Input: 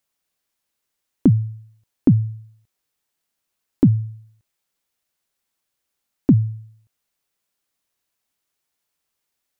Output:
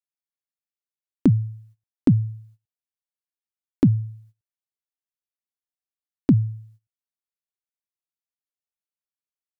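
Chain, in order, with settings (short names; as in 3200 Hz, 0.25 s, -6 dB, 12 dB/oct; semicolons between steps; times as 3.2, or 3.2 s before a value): gate -47 dBFS, range -21 dB; gain -2.5 dB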